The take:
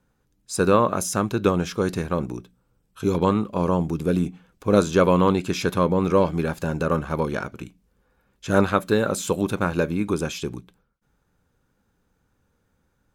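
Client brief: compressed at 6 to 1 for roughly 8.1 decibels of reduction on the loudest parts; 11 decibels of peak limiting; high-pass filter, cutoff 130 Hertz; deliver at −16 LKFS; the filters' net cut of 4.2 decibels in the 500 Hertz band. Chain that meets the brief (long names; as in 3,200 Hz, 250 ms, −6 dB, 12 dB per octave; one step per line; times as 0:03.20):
high-pass filter 130 Hz
parametric band 500 Hz −5 dB
downward compressor 6 to 1, threshold −23 dBFS
level +17.5 dB
brickwall limiter −3.5 dBFS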